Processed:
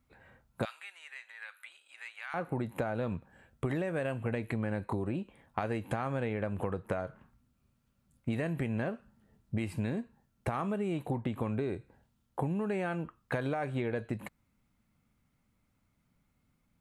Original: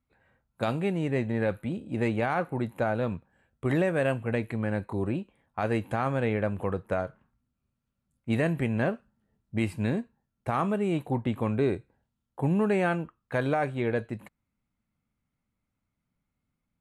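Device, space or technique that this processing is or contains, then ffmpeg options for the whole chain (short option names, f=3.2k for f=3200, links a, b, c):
serial compression, leveller first: -filter_complex "[0:a]acompressor=threshold=-31dB:ratio=2,acompressor=threshold=-38dB:ratio=6,asettb=1/sr,asplit=3[a][b][c];[a]atrim=end=0.654[d];[b]atrim=start=0.65:end=2.34,asetpts=PTS-STARTPTS,afade=t=in:d=0.004:c=qsin,afade=t=out:st=1.686:d=0.004:c=qsin,highpass=f=1.3k:w=0.5412,highpass=f=1.3k:w=1.3066[e];[c]atrim=start=2.336[f];[d][e]acrossfade=d=0.004:c1=hsin:c2=qsin[g];[g][f]acrossfade=d=0.004:c1=qsin:c2=hsin,volume=7.5dB"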